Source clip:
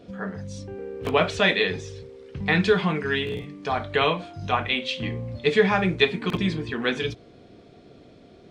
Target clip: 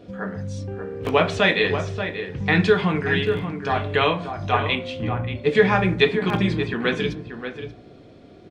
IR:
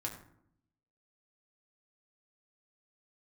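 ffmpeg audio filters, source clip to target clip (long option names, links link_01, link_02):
-filter_complex "[0:a]asettb=1/sr,asplit=3[link_01][link_02][link_03];[link_01]atrim=end=4.754[link_04];[link_02]atrim=start=4.75:end=5.55,asetpts=PTS-STARTPTS,afade=type=in:duration=0.004:curve=qsin,afade=type=out:start_time=0.796:duration=0.004:curve=qsin,equalizer=frequency=4000:width_type=o:width=2.6:gain=-8.5[link_05];[link_03]atrim=start=5.546[link_06];[link_04][link_05]acrossfade=duration=0.004:curve1=hsin:curve2=qsin[link_07];[link_07][link_06]acrossfade=duration=0.004:curve1=qsin:curve2=hsin,asplit=2[link_08][link_09];[link_09]adelay=583.1,volume=-8dB,highshelf=frequency=4000:gain=-13.1[link_10];[link_08][link_10]amix=inputs=2:normalize=0,asplit=2[link_11][link_12];[1:a]atrim=start_sample=2205,lowpass=3800[link_13];[link_12][link_13]afir=irnorm=-1:irlink=0,volume=-7.5dB[link_14];[link_11][link_14]amix=inputs=2:normalize=0"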